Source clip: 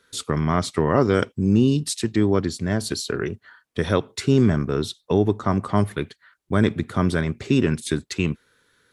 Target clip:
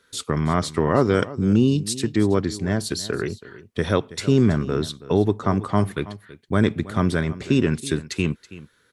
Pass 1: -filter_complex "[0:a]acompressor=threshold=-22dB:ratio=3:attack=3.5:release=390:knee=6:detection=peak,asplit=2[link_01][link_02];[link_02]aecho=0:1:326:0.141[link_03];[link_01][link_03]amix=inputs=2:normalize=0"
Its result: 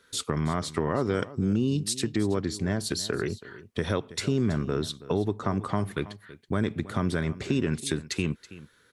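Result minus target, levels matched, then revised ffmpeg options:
downward compressor: peak gain reduction +9.5 dB
-filter_complex "[0:a]asplit=2[link_01][link_02];[link_02]aecho=0:1:326:0.141[link_03];[link_01][link_03]amix=inputs=2:normalize=0"

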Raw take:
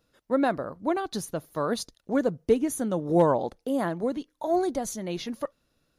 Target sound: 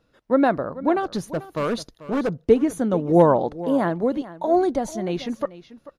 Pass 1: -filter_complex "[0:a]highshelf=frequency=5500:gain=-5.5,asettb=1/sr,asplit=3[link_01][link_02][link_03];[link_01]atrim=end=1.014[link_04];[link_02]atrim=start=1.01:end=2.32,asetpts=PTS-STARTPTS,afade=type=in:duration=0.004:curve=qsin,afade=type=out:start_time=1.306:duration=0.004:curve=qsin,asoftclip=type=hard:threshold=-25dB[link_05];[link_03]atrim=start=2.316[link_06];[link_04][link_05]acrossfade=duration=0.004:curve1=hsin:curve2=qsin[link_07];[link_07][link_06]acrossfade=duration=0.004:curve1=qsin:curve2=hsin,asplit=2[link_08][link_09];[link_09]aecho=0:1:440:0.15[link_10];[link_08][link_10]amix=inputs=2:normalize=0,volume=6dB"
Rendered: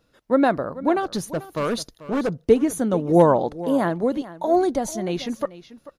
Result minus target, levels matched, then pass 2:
8,000 Hz band +6.0 dB
-filter_complex "[0:a]highshelf=frequency=5500:gain=-15,asettb=1/sr,asplit=3[link_01][link_02][link_03];[link_01]atrim=end=1.014[link_04];[link_02]atrim=start=1.01:end=2.32,asetpts=PTS-STARTPTS,afade=type=in:duration=0.004:curve=qsin,afade=type=out:start_time=1.306:duration=0.004:curve=qsin,asoftclip=type=hard:threshold=-25dB[link_05];[link_03]atrim=start=2.316[link_06];[link_04][link_05]acrossfade=duration=0.004:curve1=hsin:curve2=qsin[link_07];[link_07][link_06]acrossfade=duration=0.004:curve1=qsin:curve2=hsin,asplit=2[link_08][link_09];[link_09]aecho=0:1:440:0.15[link_10];[link_08][link_10]amix=inputs=2:normalize=0,volume=6dB"

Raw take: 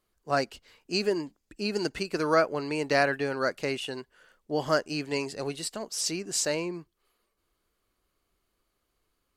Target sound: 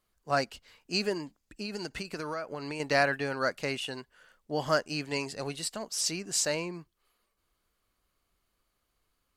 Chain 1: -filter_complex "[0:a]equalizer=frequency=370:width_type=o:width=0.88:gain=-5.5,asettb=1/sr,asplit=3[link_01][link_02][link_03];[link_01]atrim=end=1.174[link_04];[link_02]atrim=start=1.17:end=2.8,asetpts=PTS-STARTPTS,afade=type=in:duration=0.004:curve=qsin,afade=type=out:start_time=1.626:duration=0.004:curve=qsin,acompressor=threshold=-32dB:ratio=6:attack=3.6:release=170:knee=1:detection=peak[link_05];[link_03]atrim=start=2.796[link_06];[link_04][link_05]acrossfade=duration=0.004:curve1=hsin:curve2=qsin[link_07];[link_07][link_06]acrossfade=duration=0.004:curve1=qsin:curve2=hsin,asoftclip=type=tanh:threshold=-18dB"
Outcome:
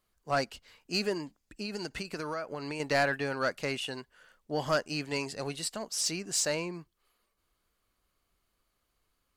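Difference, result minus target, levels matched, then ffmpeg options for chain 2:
soft clipping: distortion +17 dB
-filter_complex "[0:a]equalizer=frequency=370:width_type=o:width=0.88:gain=-5.5,asettb=1/sr,asplit=3[link_01][link_02][link_03];[link_01]atrim=end=1.174[link_04];[link_02]atrim=start=1.17:end=2.8,asetpts=PTS-STARTPTS,afade=type=in:duration=0.004:curve=qsin,afade=type=out:start_time=1.626:duration=0.004:curve=qsin,acompressor=threshold=-32dB:ratio=6:attack=3.6:release=170:knee=1:detection=peak[link_05];[link_03]atrim=start=2.796[link_06];[link_04][link_05]acrossfade=duration=0.004:curve1=hsin:curve2=qsin[link_07];[link_07][link_06]acrossfade=duration=0.004:curve1=qsin:curve2=hsin,asoftclip=type=tanh:threshold=-7.5dB"

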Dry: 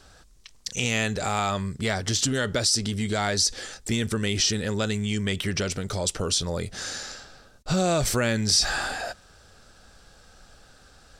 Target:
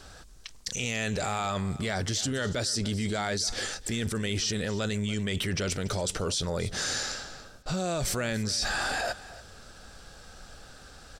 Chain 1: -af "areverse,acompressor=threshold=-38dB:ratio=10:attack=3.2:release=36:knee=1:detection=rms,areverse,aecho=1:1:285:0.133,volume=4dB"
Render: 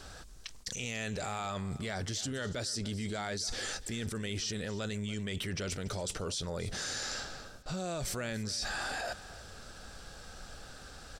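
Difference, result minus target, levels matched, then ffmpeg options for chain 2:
downward compressor: peak gain reduction +7 dB
-af "areverse,acompressor=threshold=-30.5dB:ratio=10:attack=3.2:release=36:knee=1:detection=rms,areverse,aecho=1:1:285:0.133,volume=4dB"

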